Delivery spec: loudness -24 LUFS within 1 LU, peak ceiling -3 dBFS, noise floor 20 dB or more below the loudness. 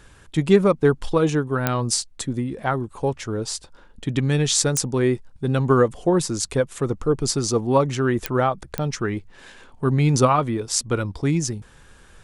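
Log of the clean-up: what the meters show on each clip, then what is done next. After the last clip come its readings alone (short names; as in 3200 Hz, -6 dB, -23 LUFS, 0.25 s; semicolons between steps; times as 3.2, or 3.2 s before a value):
clicks 4; loudness -22.0 LUFS; peak -2.0 dBFS; loudness target -24.0 LUFS
-> de-click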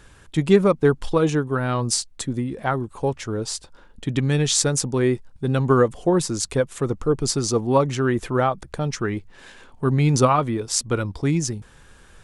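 clicks 0; loudness -22.0 LUFS; peak -2.0 dBFS; loudness target -24.0 LUFS
-> gain -2 dB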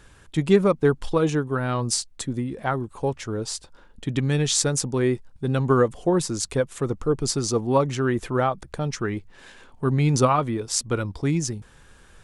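loudness -24.0 LUFS; peak -4.0 dBFS; noise floor -52 dBFS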